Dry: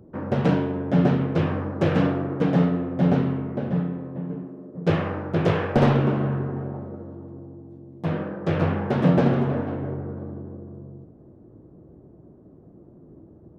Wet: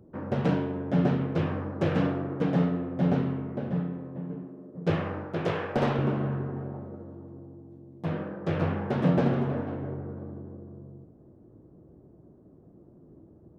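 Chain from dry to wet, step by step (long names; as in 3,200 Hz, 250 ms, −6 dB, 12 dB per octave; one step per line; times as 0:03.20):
0:05.25–0:05.99: low-shelf EQ 210 Hz −8 dB
level −5 dB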